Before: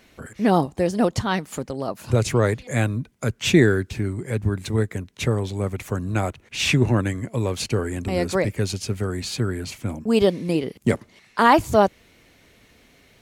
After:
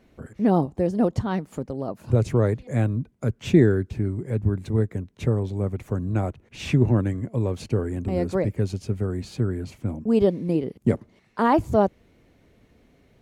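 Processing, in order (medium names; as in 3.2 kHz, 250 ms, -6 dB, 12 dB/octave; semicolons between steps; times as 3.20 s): tilt shelf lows +7.5 dB, about 1.1 kHz; trim -7 dB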